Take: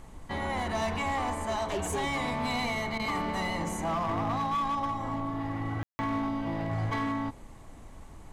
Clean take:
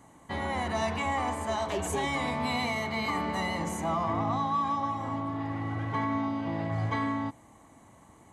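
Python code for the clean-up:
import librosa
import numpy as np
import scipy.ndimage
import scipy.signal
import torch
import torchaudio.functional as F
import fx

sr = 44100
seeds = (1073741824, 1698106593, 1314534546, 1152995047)

y = fx.fix_declip(x, sr, threshold_db=-25.5)
y = fx.fix_ambience(y, sr, seeds[0], print_start_s=7.32, print_end_s=7.82, start_s=5.83, end_s=5.99)
y = fx.fix_interpolate(y, sr, at_s=(2.98,), length_ms=14.0)
y = fx.noise_reduce(y, sr, print_start_s=7.32, print_end_s=7.82, reduce_db=9.0)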